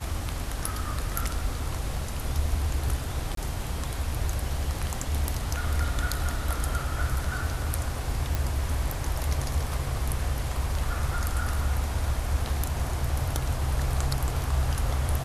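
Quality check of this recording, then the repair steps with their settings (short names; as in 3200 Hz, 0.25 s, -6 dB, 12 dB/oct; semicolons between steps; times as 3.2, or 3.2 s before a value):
3.35–3.37 gap 23 ms
8.35 pop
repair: de-click; interpolate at 3.35, 23 ms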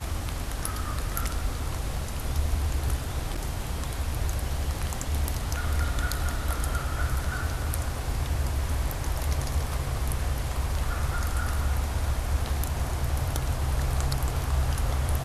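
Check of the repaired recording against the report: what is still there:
none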